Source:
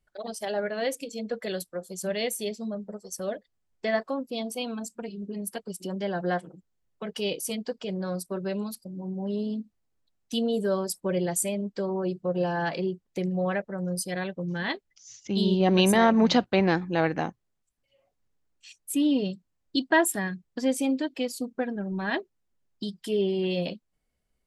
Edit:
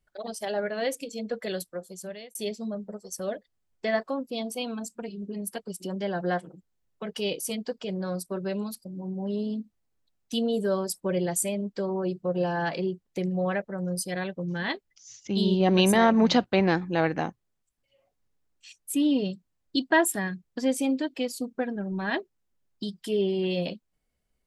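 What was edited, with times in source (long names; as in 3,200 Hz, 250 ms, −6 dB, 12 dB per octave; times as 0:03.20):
0:01.68–0:02.35: fade out linear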